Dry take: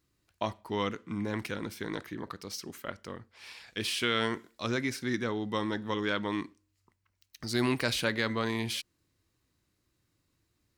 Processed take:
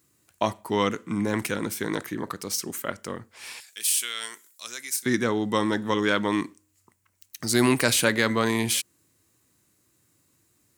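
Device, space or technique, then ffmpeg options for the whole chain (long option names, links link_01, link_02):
budget condenser microphone: -filter_complex "[0:a]asettb=1/sr,asplit=3[link_01][link_02][link_03];[link_01]atrim=end=3.604[link_04];[link_02]atrim=start=3.6:end=5.06,asetpts=PTS-STARTPTS,afade=type=in:duration=0.004:curve=qsin,afade=type=out:start_time=1.456:duration=0.004:curve=qsin,aderivative[link_05];[link_03]atrim=start=5.056[link_06];[link_04][link_05]acrossfade=duration=0.004:curve1=hsin:curve2=qsin[link_07];[link_07][link_06]acrossfade=duration=0.004:curve1=qsin:curve2=hsin,highpass=110,highshelf=frequency=6000:width_type=q:width=1.5:gain=7.5,volume=8dB"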